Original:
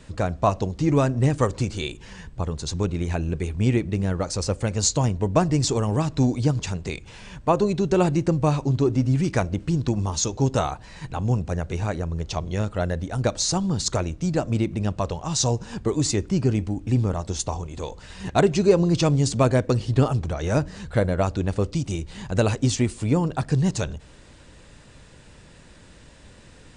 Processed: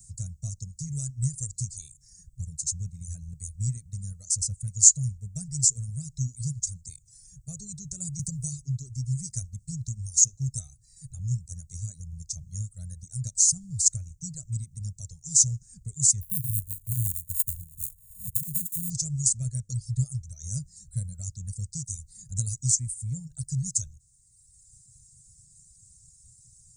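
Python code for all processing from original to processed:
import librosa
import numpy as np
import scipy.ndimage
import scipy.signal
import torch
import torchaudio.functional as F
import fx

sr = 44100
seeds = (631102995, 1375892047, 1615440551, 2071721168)

y = fx.chain(x, sr, fx.high_shelf(hz=5600.0, db=5.0),
    fx.band_squash(depth_pct=100), at=(8.19, 8.62))
y = fx.chain(y, sr, fx.sample_sort(block=32),
    fx.over_compress(threshold_db=-20.0, ratio=-0.5),
    fx.fixed_phaser(hz=2300.0, stages=4), at=(16.21, 18.9))
y = fx.dereverb_blind(y, sr, rt60_s=1.6)
y = scipy.signal.sosfilt(scipy.signal.ellip(3, 1.0, 40, [130.0, 7000.0], 'bandstop', fs=sr, output='sos'), y)
y = fx.tilt_eq(y, sr, slope=2.5)
y = y * 10.0 ** (3.5 / 20.0)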